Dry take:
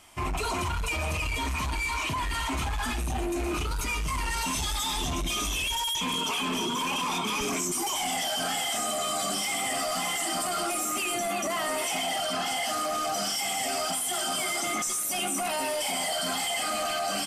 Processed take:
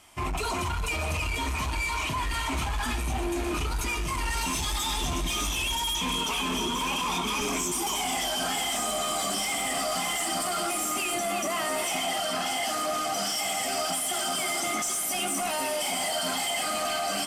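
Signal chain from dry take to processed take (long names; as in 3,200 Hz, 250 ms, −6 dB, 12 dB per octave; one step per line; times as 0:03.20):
harmonic generator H 2 −14 dB, 4 −27 dB, 7 −37 dB, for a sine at −20 dBFS
feedback delay with all-pass diffusion 587 ms, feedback 70%, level −12.5 dB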